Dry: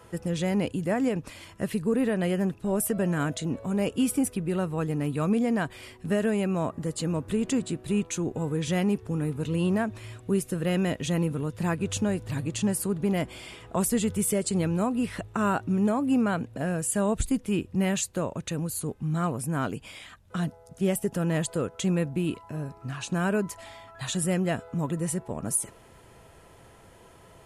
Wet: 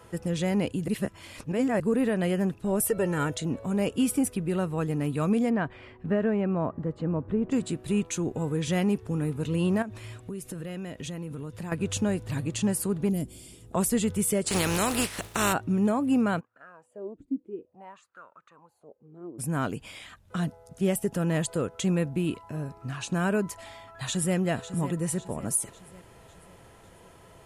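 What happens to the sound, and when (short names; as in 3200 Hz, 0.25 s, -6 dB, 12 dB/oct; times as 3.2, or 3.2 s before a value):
0.88–1.8 reverse
2.8–3.38 comb 2.2 ms
5.49–7.51 LPF 2400 Hz -> 1100 Hz
9.82–11.72 compressor, threshold -33 dBFS
13.09–13.73 EQ curve 270 Hz 0 dB, 1000 Hz -19 dB, 2000 Hz -18 dB, 9300 Hz +5 dB
14.46–15.52 spectral contrast lowered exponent 0.47
16.39–19.38 wah 0.86 Hz -> 0.29 Hz 280–1400 Hz, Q 8.8
23.54–24.36 echo throw 0.55 s, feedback 50%, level -12.5 dB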